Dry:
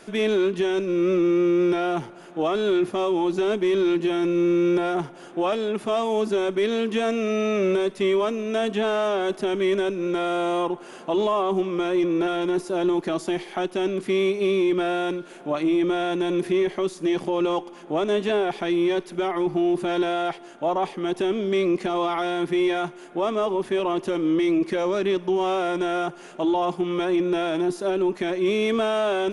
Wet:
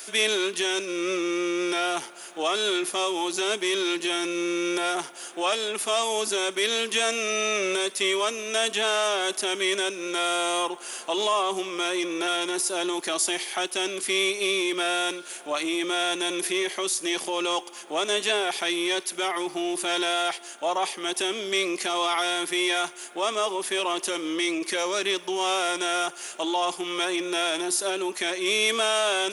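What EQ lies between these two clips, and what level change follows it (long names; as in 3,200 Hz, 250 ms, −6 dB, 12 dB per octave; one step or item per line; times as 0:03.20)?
high-pass filter 240 Hz 12 dB per octave
spectral tilt +4.5 dB per octave
high-shelf EQ 5,900 Hz +6.5 dB
0.0 dB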